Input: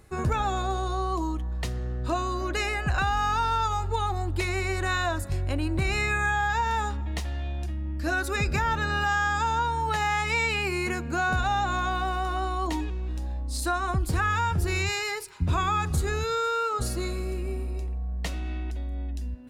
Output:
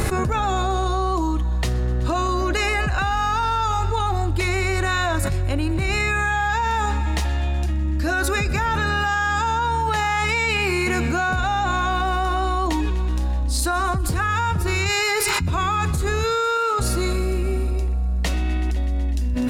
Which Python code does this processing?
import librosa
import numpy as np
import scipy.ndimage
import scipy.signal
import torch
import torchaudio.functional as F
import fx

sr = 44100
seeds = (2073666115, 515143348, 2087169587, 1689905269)

y = fx.tremolo_random(x, sr, seeds[0], hz=3.5, depth_pct=55)
y = fx.echo_thinned(y, sr, ms=125, feedback_pct=83, hz=500.0, wet_db=-21.5)
y = fx.env_flatten(y, sr, amount_pct=100)